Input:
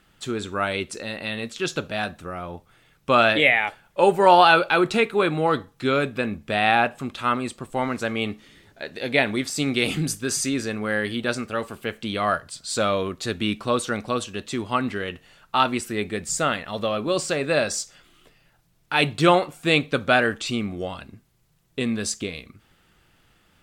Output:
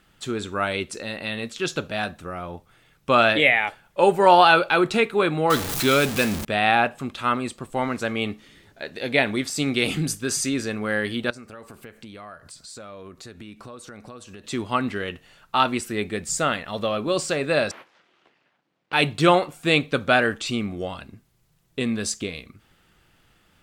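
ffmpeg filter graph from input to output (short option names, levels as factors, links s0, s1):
-filter_complex "[0:a]asettb=1/sr,asplit=3[s0][s1][s2];[s0]atrim=end=5.504[s3];[s1]atrim=start=5.5:end=6.45,asetpts=PTS-STARTPTS,afade=t=in:d=0.004:c=qsin,afade=t=out:st=0.946:d=0.004:c=qsin,aeval=exprs='val(0)+0.5*0.0501*sgn(val(0))':c=same,highshelf=f=3300:g=10.5[s4];[s2]atrim=start=6.446[s5];[s3][s4]acrossfade=d=0.004:c1=hsin:c2=qsin[s6];[s6][s5]acrossfade=d=0.004:c1=qsin:c2=hsin,asettb=1/sr,asplit=3[s7][s8][s9];[s7]atrim=end=11.304[s10];[s8]atrim=start=11.3:end=14.44,asetpts=PTS-STARTPTS,afade=t=in:d=0.004:c=qsin,afade=t=out:st=3.136:d=0.004:c=qsin,acompressor=threshold=0.0126:ratio=6:attack=3.2:release=140:knee=1:detection=peak,equalizer=f=3200:t=o:w=0.55:g=-6[s11];[s9]atrim=start=14.436[s12];[s10][s11]acrossfade=d=0.004:c1=hsin:c2=qsin[s13];[s13][s12]acrossfade=d=0.004:c1=qsin:c2=hsin,asettb=1/sr,asplit=3[s14][s15][s16];[s14]atrim=end=17.714[s17];[s15]atrim=start=17.71:end=18.93,asetpts=PTS-STARTPTS,afade=t=in:d=0.004:c=qsin,afade=t=out:st=1.216:d=0.004:c=qsin,acompressor=threshold=0.0178:ratio=2.5:attack=3.2:release=140:knee=1:detection=peak,aeval=exprs='abs(val(0))':c=same,highpass=250,lowpass=2900[s18];[s16]atrim=start=18.926[s19];[s17][s18]acrossfade=d=0.004:c1=hsin:c2=qsin[s20];[s20][s19]acrossfade=d=0.004:c1=qsin:c2=hsin"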